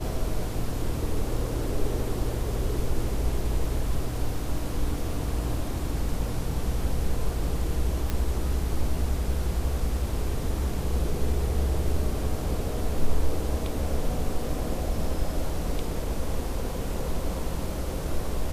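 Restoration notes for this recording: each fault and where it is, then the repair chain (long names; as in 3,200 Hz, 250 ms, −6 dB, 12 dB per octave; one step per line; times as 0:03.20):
0:08.10: click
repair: click removal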